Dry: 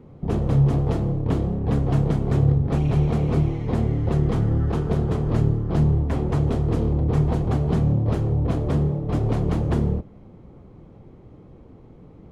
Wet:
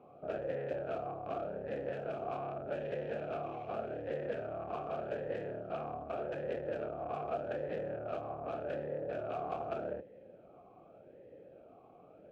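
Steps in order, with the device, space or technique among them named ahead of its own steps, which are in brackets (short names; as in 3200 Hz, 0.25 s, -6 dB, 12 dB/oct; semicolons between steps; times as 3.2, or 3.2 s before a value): talk box (tube stage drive 30 dB, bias 0.55; vowel sweep a-e 0.84 Hz); gain +9.5 dB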